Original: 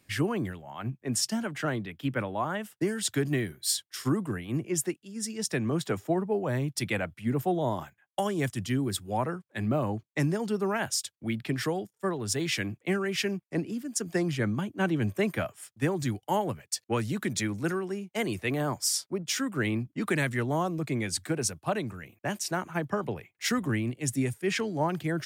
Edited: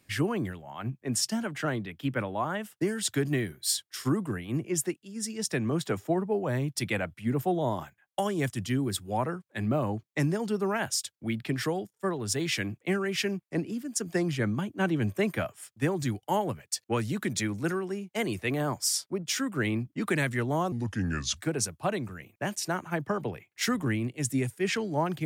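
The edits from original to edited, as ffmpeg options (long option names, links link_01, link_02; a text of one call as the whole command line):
ffmpeg -i in.wav -filter_complex "[0:a]asplit=3[link_01][link_02][link_03];[link_01]atrim=end=20.724[link_04];[link_02]atrim=start=20.72:end=21.2,asetpts=PTS-STARTPTS,asetrate=32634,aresample=44100,atrim=end_sample=28605,asetpts=PTS-STARTPTS[link_05];[link_03]atrim=start=21.196[link_06];[link_04][link_05]acrossfade=duration=0.004:curve1=hsin:curve2=hsin[link_07];[link_07][link_06]acrossfade=duration=0.004:curve1=hsin:curve2=hsin" out.wav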